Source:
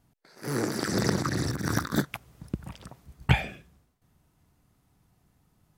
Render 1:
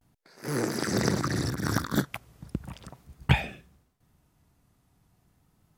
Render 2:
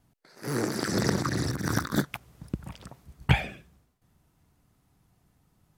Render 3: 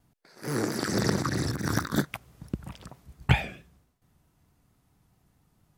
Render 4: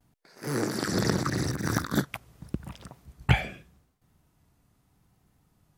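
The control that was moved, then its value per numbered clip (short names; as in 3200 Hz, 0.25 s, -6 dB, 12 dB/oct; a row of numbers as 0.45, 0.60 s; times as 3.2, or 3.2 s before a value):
vibrato, rate: 0.37, 14, 4.5, 0.82 Hz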